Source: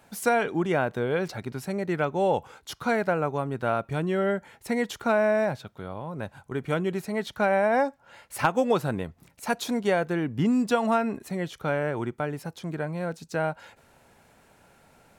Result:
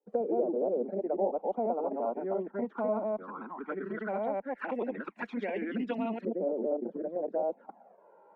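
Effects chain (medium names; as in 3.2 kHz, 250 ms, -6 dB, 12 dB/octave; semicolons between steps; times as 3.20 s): chunks repeated in reverse 250 ms, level 0 dB; steep high-pass 200 Hz 96 dB/octave; gate with hold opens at -46 dBFS; treble shelf 2.8 kHz -9.5 dB; compression 2:1, threshold -36 dBFS, peak gain reduction 11.5 dB; Chebyshev shaper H 6 -44 dB, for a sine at -17.5 dBFS; time stretch by phase-locked vocoder 0.55×; LFO low-pass saw up 0.16 Hz 490–2900 Hz; touch-sensitive flanger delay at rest 2.3 ms, full sweep at -26.5 dBFS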